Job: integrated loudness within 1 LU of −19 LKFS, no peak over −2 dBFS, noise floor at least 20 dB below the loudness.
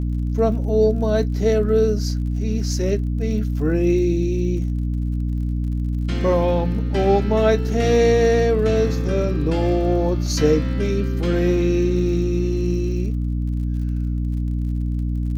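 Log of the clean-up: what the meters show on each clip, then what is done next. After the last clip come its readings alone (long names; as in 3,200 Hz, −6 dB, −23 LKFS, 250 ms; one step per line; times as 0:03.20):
crackle rate 44 per second; mains hum 60 Hz; hum harmonics up to 300 Hz; level of the hum −20 dBFS; integrated loudness −20.5 LKFS; sample peak −5.5 dBFS; target loudness −19.0 LKFS
→ click removal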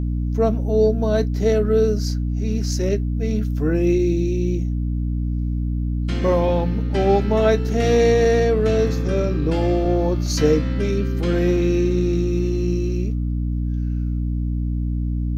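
crackle rate 0.20 per second; mains hum 60 Hz; hum harmonics up to 300 Hz; level of the hum −20 dBFS
→ hum removal 60 Hz, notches 5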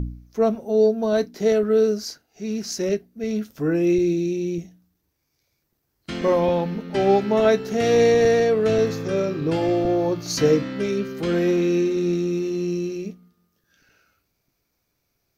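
mains hum none found; integrated loudness −21.5 LKFS; sample peak −6.5 dBFS; target loudness −19.0 LKFS
→ level +2.5 dB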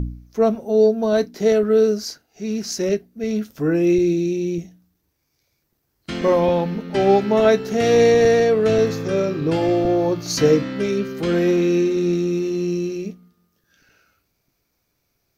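integrated loudness −19.0 LKFS; sample peak −4.0 dBFS; background noise floor −72 dBFS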